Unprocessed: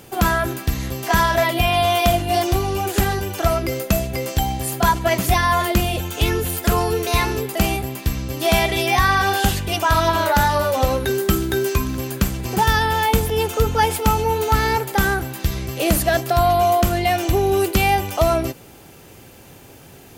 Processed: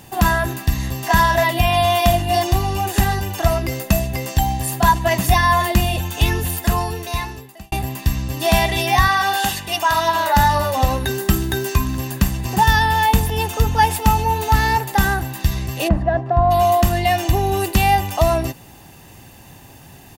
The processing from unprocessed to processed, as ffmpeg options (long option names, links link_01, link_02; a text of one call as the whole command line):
ffmpeg -i in.wav -filter_complex "[0:a]asettb=1/sr,asplit=3[link_01][link_02][link_03];[link_01]atrim=end=9.084[link_04];[link_02]atrim=start=9.08:end=10.33,asetpts=PTS-STARTPTS,afade=type=in:duration=0.004:curve=qsin,afade=type=out:start_time=1.246:duration=0.004:curve=qsin,highpass=frequency=440:poles=1[link_05];[link_03]atrim=start=10.326[link_06];[link_04][link_05]acrossfade=duration=0.004:curve1=hsin:curve2=qsin[link_07];[link_07][link_06]acrossfade=duration=0.004:curve1=qsin:curve2=hsin,asplit=3[link_08][link_09][link_10];[link_08]afade=type=out:start_time=15.87:duration=0.02[link_11];[link_09]lowpass=1100,afade=type=in:start_time=15.87:duration=0.02,afade=type=out:start_time=16.5:duration=0.02[link_12];[link_10]afade=type=in:start_time=16.5:duration=0.02[link_13];[link_11][link_12][link_13]amix=inputs=3:normalize=0,asplit=2[link_14][link_15];[link_14]atrim=end=7.72,asetpts=PTS-STARTPTS,afade=type=out:start_time=6.44:duration=1.28[link_16];[link_15]atrim=start=7.72,asetpts=PTS-STARTPTS,afade=type=in:duration=0.004:curve=hsin[link_17];[link_16][link_17]concat=n=2:v=0:a=1,aecho=1:1:1.1:0.52" out.wav